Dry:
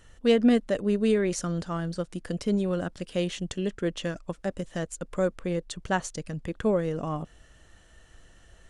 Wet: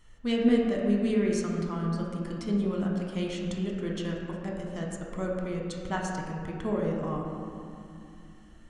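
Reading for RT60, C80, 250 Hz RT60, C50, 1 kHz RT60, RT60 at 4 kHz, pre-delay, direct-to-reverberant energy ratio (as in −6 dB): 2.7 s, 2.5 dB, 3.8 s, 1.5 dB, 2.8 s, 1.4 s, 3 ms, −1.5 dB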